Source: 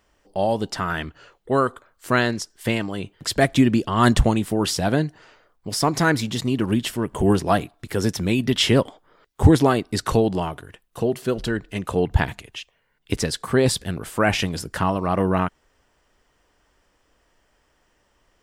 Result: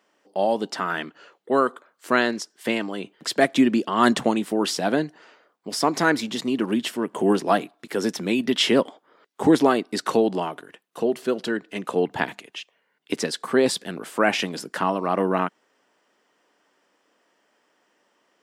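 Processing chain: high-pass 210 Hz 24 dB/octave; treble shelf 7.9 kHz -7 dB

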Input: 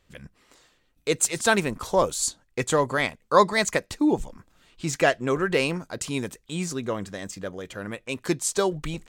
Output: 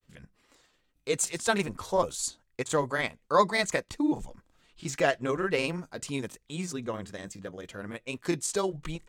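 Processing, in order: granulator, spray 20 ms, pitch spread up and down by 0 st; trim -4 dB

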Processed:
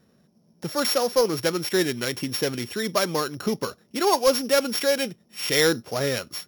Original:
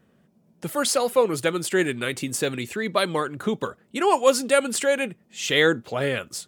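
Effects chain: sorted samples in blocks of 8 samples; saturation -9 dBFS, distortion -21 dB

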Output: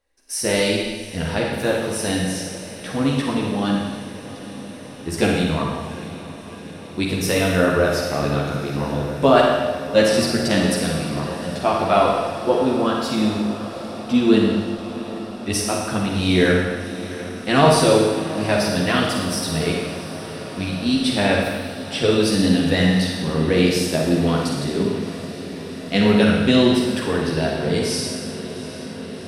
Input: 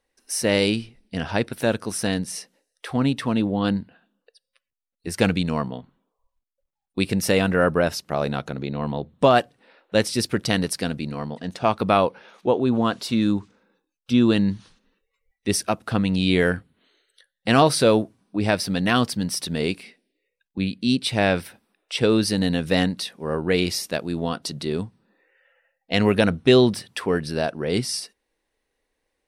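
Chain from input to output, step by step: chorus voices 6, 0.86 Hz, delay 13 ms, depth 1.8 ms; echo that smears into a reverb 747 ms, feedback 77%, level -15 dB; Schroeder reverb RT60 1.4 s, DRR -0.5 dB; trim +2.5 dB

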